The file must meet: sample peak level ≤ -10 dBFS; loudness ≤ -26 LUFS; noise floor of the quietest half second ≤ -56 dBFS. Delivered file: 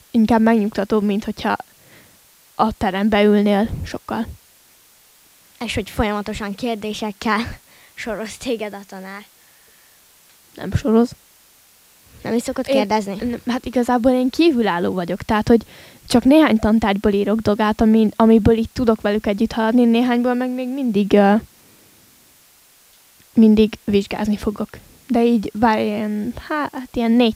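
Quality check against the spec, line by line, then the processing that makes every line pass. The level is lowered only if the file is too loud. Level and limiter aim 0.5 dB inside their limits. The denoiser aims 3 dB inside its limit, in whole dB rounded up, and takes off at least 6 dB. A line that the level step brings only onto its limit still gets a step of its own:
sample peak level -2.0 dBFS: fail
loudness -18.0 LUFS: fail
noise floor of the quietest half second -52 dBFS: fail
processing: trim -8.5 dB

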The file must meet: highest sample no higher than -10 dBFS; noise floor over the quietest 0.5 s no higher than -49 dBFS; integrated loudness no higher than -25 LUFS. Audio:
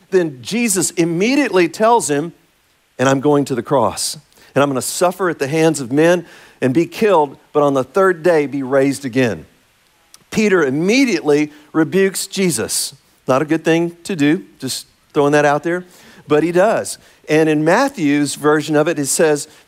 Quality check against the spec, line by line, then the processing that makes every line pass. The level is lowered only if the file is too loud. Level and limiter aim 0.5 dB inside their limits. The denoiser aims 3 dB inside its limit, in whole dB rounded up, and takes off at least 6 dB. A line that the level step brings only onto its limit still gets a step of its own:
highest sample -3.5 dBFS: fail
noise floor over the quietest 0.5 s -58 dBFS: pass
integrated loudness -16.0 LUFS: fail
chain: trim -9.5 dB

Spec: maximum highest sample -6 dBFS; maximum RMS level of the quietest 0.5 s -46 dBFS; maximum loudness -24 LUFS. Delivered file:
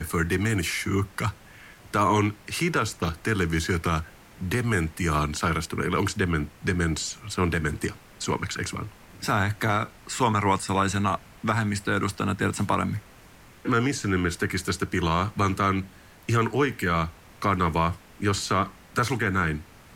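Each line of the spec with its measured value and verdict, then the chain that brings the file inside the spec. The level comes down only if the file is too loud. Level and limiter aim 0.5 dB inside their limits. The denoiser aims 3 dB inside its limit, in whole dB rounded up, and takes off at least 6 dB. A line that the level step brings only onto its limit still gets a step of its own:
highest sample -10.0 dBFS: pass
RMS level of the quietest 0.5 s -50 dBFS: pass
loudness -26.5 LUFS: pass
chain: none needed

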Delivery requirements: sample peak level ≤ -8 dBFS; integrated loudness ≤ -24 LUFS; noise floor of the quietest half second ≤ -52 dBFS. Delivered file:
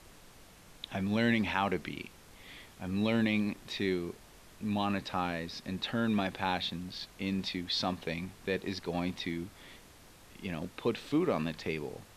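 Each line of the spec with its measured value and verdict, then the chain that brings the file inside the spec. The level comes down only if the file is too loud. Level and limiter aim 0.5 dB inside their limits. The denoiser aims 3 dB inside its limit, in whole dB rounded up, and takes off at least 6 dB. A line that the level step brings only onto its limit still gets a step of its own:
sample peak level -14.0 dBFS: pass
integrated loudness -34.0 LUFS: pass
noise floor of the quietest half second -56 dBFS: pass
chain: none needed

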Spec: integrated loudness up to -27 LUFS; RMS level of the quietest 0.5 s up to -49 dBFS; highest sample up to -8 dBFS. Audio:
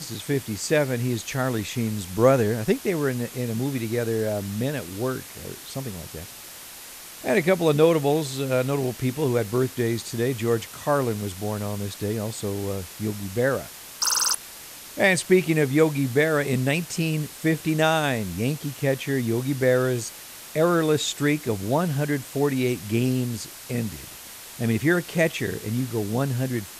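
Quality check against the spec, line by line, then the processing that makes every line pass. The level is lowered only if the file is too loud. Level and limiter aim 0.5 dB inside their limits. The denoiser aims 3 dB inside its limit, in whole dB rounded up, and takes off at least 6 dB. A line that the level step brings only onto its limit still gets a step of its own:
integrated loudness -24.5 LUFS: fail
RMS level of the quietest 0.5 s -42 dBFS: fail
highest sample -5.0 dBFS: fail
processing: noise reduction 7 dB, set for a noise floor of -42 dBFS; trim -3 dB; peak limiter -8.5 dBFS

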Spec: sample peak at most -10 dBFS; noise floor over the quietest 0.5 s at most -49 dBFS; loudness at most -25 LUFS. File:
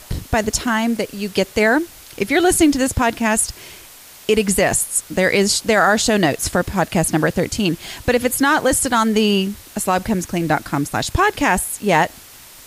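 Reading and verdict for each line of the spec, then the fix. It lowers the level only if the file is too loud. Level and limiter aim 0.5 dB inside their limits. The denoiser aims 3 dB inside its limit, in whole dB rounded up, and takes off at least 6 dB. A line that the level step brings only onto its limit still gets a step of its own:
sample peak -4.5 dBFS: fail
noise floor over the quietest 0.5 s -42 dBFS: fail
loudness -17.5 LUFS: fail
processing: trim -8 dB

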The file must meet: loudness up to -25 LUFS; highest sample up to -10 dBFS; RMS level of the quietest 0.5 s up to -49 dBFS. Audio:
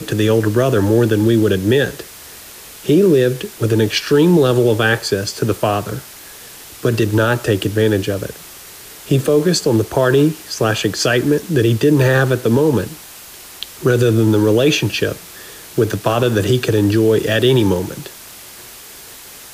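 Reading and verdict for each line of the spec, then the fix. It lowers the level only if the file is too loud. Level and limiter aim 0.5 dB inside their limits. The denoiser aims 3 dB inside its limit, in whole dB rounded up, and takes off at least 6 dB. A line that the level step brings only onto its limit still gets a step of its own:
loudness -15.5 LUFS: fail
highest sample -4.0 dBFS: fail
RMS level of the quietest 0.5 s -37 dBFS: fail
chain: noise reduction 6 dB, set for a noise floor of -37 dBFS; trim -10 dB

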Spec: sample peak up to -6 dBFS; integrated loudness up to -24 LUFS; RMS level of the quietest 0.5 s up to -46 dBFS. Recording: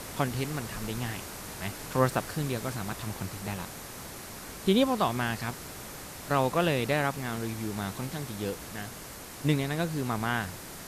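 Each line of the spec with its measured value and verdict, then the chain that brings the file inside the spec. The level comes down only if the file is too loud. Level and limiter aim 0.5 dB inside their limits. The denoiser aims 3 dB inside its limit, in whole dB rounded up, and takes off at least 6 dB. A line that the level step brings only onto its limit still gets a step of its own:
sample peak -11.0 dBFS: pass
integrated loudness -31.5 LUFS: pass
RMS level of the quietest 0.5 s -43 dBFS: fail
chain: noise reduction 6 dB, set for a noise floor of -43 dBFS

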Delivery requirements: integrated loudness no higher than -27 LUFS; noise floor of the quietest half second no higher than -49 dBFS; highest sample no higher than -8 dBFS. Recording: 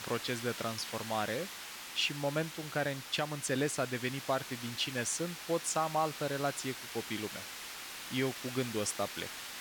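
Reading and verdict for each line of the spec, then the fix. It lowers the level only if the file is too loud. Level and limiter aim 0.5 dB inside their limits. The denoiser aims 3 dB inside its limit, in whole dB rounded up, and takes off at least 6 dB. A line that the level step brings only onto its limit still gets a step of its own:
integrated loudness -35.5 LUFS: pass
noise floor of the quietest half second -46 dBFS: fail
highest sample -19.0 dBFS: pass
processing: noise reduction 6 dB, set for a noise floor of -46 dBFS

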